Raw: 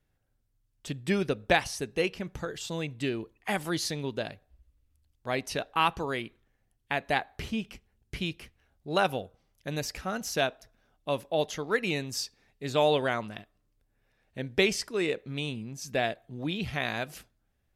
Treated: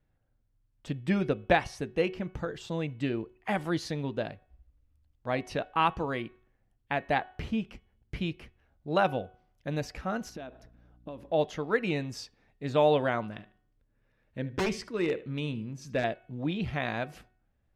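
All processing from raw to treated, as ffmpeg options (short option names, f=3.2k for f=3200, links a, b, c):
-filter_complex "[0:a]asettb=1/sr,asplit=3[a][b][c];[a]atrim=end=10.294[d];[b]atrim=start=10.29:end=11.32,asetpts=PTS-STARTPTS,afade=t=in:d=0.004:c=qsin,afade=t=out:st=1.026:d=0.004:c=qsin,equalizer=f=290:w=1.2:g=7.5,acompressor=threshold=-38dB:ratio=10:attack=3.2:release=140:knee=1:detection=peak,aeval=exprs='val(0)+0.001*(sin(2*PI*60*n/s)+sin(2*PI*2*60*n/s)/2+sin(2*PI*3*60*n/s)/3+sin(2*PI*4*60*n/s)/4+sin(2*PI*5*60*n/s)/5)':c=same[e];[c]atrim=start=11.316[f];[d][e]acrossfade=d=0.004:c1=hsin:c2=qsin[g];[g][f]acrossfade=d=0.004:c1=qsin:c2=hsin,asettb=1/sr,asplit=3[h][i][j];[h]atrim=end=13.344[k];[i]atrim=start=13.34:end=16.04,asetpts=PTS-STARTPTS,afade=t=in:d=0.004:c=qsin,afade=t=out:st=2.696:d=0.004:c=qsin,equalizer=f=740:w=7.7:g=-13,asplit=2[l][m];[m]adelay=75,lowpass=f=4.7k:p=1,volume=-16.5dB,asplit=2[n][o];[o]adelay=75,lowpass=f=4.7k:p=1,volume=0.23[p];[l][n][p]amix=inputs=3:normalize=0,atrim=end_sample=119070,aeval=exprs='0.0891*(abs(mod(val(0)/0.0891+3,4)-2)-1)':c=same[q];[j]atrim=start=16.036[r];[k][q]acrossfade=d=0.004:c1=hsin:c2=qsin[s];[s][r]acrossfade=d=0.004:c1=qsin:c2=hsin,lowpass=f=1.5k:p=1,bandreject=f=400:w=12,bandreject=f=370.1:t=h:w=4,bandreject=f=740.2:t=h:w=4,bandreject=f=1.1103k:t=h:w=4,bandreject=f=1.4804k:t=h:w=4,bandreject=f=1.8505k:t=h:w=4,bandreject=f=2.2206k:t=h:w=4,bandreject=f=2.5907k:t=h:w=4,bandreject=f=2.9608k:t=h:w=4,bandreject=f=3.3309k:t=h:w=4,volume=2dB"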